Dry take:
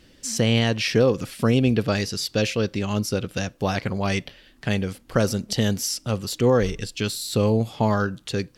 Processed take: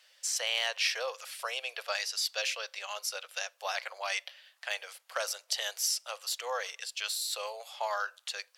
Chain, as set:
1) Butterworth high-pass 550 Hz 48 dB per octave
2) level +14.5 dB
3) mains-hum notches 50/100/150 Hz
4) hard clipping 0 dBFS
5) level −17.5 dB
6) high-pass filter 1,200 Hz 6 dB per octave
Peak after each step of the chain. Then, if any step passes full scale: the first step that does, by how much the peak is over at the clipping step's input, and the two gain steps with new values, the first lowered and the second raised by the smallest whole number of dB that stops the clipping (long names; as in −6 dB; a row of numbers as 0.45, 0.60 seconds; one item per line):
−10.5, +4.0, +4.0, 0.0, −17.5, −16.5 dBFS
step 2, 4.0 dB
step 2 +10.5 dB, step 5 −13.5 dB